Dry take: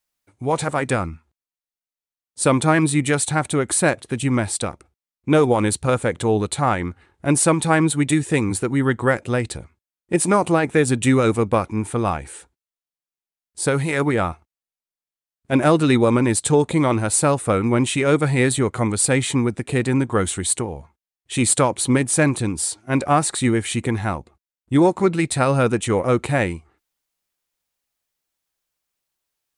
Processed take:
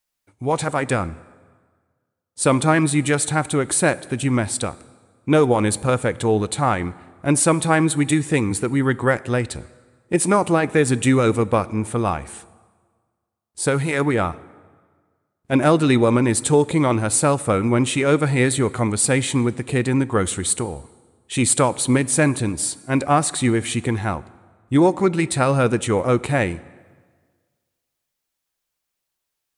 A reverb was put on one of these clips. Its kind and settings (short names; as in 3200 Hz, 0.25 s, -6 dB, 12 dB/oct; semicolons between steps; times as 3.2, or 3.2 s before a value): plate-style reverb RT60 1.6 s, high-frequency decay 0.75×, DRR 18.5 dB